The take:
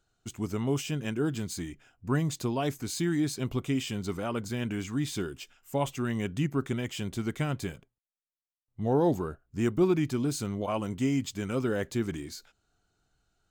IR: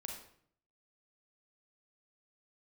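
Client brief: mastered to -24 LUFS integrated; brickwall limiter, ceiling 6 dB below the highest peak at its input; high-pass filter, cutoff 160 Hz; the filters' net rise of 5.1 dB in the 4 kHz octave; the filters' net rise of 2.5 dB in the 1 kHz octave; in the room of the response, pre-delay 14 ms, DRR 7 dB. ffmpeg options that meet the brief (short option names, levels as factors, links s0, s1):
-filter_complex "[0:a]highpass=160,equalizer=f=1000:t=o:g=3,equalizer=f=4000:t=o:g=6.5,alimiter=limit=0.112:level=0:latency=1,asplit=2[s0][s1];[1:a]atrim=start_sample=2205,adelay=14[s2];[s1][s2]afir=irnorm=-1:irlink=0,volume=0.596[s3];[s0][s3]amix=inputs=2:normalize=0,volume=2.24"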